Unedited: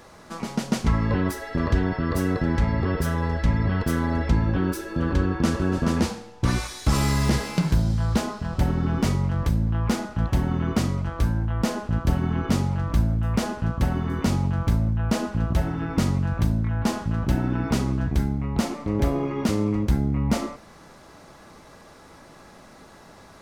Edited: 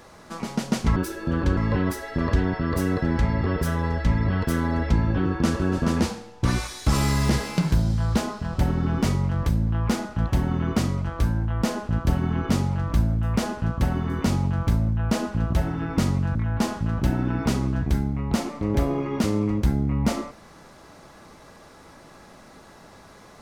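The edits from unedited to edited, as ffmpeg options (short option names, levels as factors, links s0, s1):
-filter_complex "[0:a]asplit=5[s0][s1][s2][s3][s4];[s0]atrim=end=0.962[s5];[s1]atrim=start=4.648:end=5.262[s6];[s2]atrim=start=0.958:end=4.652[s7];[s3]atrim=start=5.258:end=16.352[s8];[s4]atrim=start=16.598[s9];[s5][s6]acrossfade=d=0.004:c1=hsin:c2=hsin[s10];[s10][s7]acrossfade=d=0.004:c1=hsin:c2=hsin[s11];[s11][s8]acrossfade=d=0.004:c1=hsin:c2=hsin[s12];[s12][s9]acrossfade=d=0.004:c1=hsin:c2=hsin"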